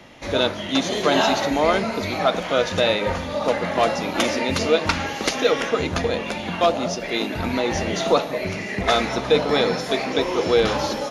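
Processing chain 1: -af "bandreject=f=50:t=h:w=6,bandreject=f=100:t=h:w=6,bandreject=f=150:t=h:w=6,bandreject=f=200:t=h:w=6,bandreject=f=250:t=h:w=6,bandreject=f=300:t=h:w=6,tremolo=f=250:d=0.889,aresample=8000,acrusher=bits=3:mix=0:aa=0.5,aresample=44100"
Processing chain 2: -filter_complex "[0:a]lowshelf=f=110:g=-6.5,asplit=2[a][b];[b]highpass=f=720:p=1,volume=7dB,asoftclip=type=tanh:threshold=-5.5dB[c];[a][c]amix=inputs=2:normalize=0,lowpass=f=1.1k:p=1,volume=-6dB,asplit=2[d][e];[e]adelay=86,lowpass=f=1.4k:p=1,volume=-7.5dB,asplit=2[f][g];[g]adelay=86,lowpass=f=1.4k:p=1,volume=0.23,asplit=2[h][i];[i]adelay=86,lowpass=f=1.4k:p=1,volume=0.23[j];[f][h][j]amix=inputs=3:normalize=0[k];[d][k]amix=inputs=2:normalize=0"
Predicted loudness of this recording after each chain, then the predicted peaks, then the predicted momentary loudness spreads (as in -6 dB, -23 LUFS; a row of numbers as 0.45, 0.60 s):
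-26.0, -23.5 LUFS; -7.0, -8.0 dBFS; 8, 6 LU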